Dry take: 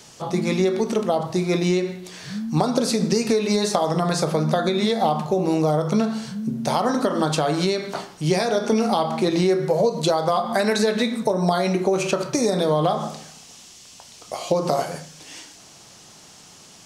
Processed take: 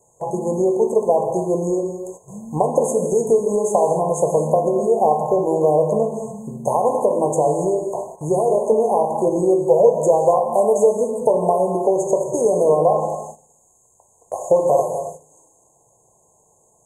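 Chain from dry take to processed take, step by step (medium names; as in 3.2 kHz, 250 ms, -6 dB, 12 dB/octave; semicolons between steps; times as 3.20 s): brick-wall FIR band-stop 1.1–6.3 kHz; treble shelf 6.3 kHz -4.5 dB; gated-style reverb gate 300 ms flat, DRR 5 dB; gate -37 dBFS, range -11 dB; graphic EQ 250/500/8000 Hz -11/+8/+4 dB; trim +1 dB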